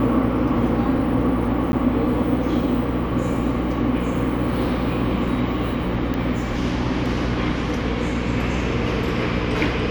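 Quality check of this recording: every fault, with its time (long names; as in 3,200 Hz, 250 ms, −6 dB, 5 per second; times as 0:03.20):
mains hum 60 Hz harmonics 5 −26 dBFS
0:01.72–0:01.73: drop-out 10 ms
0:06.14: click −14 dBFS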